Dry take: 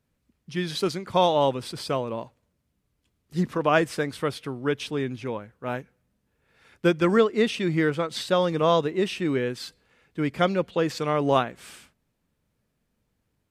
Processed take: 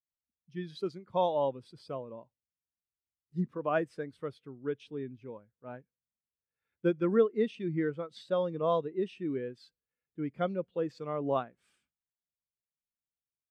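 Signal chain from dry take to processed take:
every bin expanded away from the loudest bin 1.5 to 1
level −8.5 dB

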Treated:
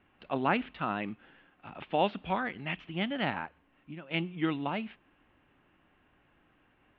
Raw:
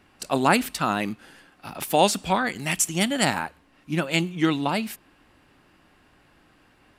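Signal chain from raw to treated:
Butterworth low-pass 3,300 Hz 48 dB per octave
0:03.45–0:04.11: downward compressor 8 to 1, threshold −33 dBFS, peak gain reduction 13.5 dB
level −8.5 dB

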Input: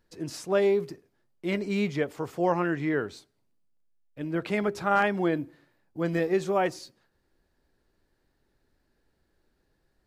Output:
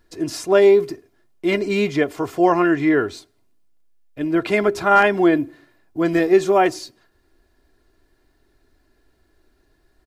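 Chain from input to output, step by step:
comb filter 2.9 ms, depth 51%
level +8.5 dB

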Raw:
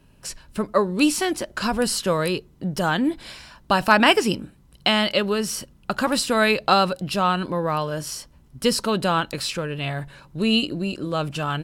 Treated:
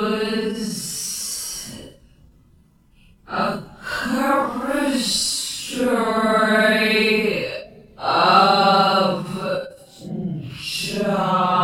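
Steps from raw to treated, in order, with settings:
extreme stretch with random phases 6×, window 0.05 s, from 0:05.33
every ending faded ahead of time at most 130 dB per second
level +1 dB

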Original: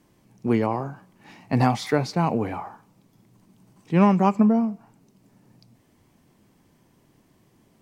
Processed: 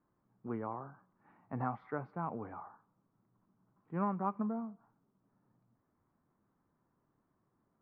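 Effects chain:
transistor ladder low-pass 1,500 Hz, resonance 55%
level −8.5 dB

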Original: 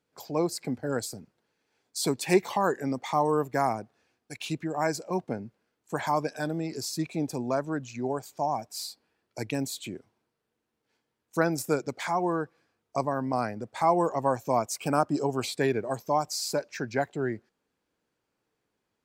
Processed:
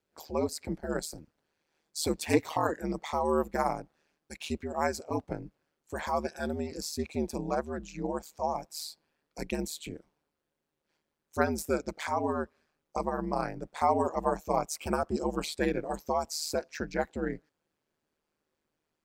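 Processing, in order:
ring modulation 77 Hz

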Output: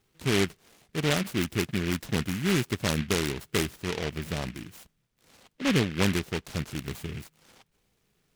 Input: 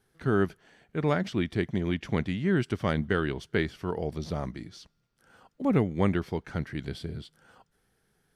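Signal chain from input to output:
short delay modulated by noise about 2,100 Hz, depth 0.21 ms

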